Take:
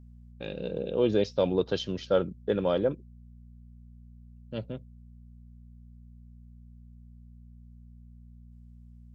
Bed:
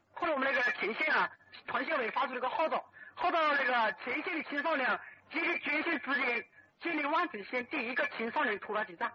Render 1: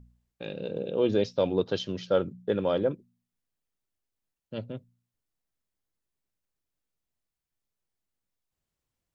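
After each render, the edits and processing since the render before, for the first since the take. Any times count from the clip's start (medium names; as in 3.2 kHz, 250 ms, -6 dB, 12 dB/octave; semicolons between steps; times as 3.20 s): de-hum 60 Hz, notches 4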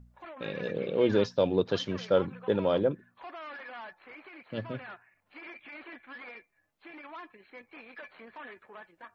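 add bed -14 dB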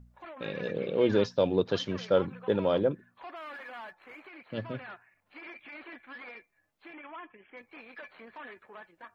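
3.36–4.27 s: median filter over 5 samples; 6.93–7.57 s: brick-wall FIR low-pass 3.5 kHz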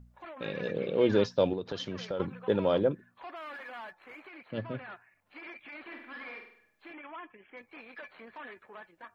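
1.53–2.20 s: compression 4:1, threshold -32 dBFS; 4.51–4.92 s: treble shelf 5.6 kHz -12 dB; 5.81–6.92 s: flutter echo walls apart 8.5 m, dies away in 0.63 s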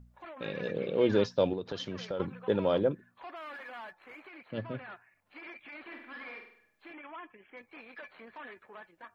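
trim -1 dB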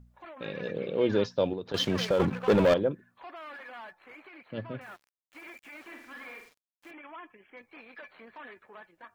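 1.74–2.74 s: waveshaping leveller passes 3; 4.81–6.91 s: small samples zeroed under -55 dBFS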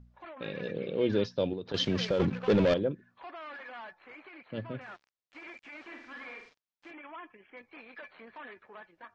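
low-pass 5.8 kHz 24 dB/octave; dynamic bell 970 Hz, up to -7 dB, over -41 dBFS, Q 0.8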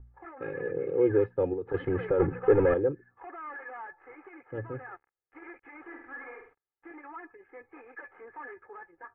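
steep low-pass 1.9 kHz 36 dB/octave; comb 2.4 ms, depth 99%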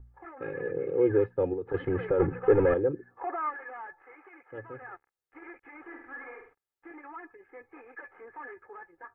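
2.93–3.49 s: peaking EQ 330 Hz -> 890 Hz +12 dB 2.5 oct; 4.02–4.82 s: bass shelf 350 Hz -12 dB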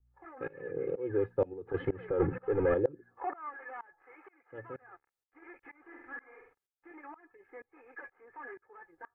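tremolo saw up 2.1 Hz, depth 95%; vibrato 2.2 Hz 38 cents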